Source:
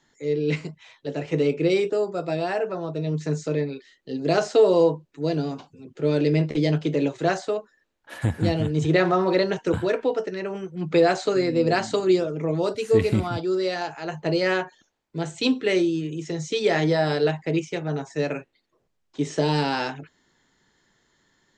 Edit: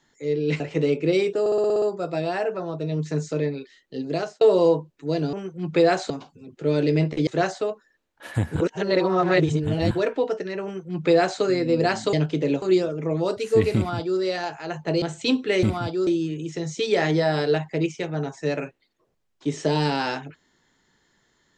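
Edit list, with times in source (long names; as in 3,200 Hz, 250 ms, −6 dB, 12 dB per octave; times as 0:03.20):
0:00.60–0:01.17: remove
0:01.97: stutter 0.06 s, 8 plays
0:04.14–0:04.56: fade out
0:06.65–0:07.14: move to 0:12.00
0:08.43–0:09.78: reverse
0:10.51–0:11.28: duplicate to 0:05.48
0:13.13–0:13.57: duplicate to 0:15.80
0:14.40–0:15.19: remove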